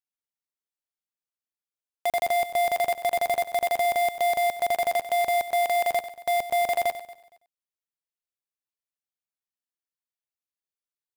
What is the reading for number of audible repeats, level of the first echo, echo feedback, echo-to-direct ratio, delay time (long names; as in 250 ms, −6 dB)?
4, −12.5 dB, repeats not evenly spaced, −11.5 dB, 95 ms